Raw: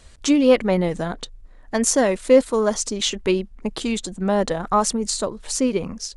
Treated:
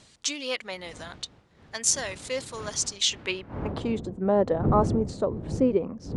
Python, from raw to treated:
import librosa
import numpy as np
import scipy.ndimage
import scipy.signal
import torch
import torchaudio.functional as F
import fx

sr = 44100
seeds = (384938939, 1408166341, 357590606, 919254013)

y = fx.dmg_wind(x, sr, seeds[0], corner_hz=100.0, level_db=-17.0)
y = fx.filter_sweep_bandpass(y, sr, from_hz=4800.0, to_hz=430.0, start_s=3.04, end_s=4.01, q=0.83)